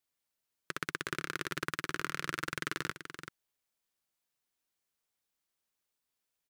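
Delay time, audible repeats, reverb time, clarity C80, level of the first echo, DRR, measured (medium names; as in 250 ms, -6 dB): 384 ms, 1, no reverb, no reverb, -9.5 dB, no reverb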